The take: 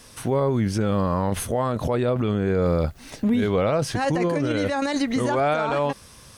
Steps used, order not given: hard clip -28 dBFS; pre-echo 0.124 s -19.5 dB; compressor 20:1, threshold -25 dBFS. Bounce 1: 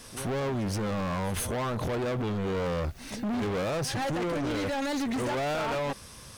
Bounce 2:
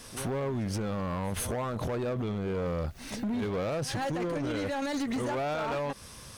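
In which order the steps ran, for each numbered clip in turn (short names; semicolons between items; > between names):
pre-echo > hard clip > compressor; pre-echo > compressor > hard clip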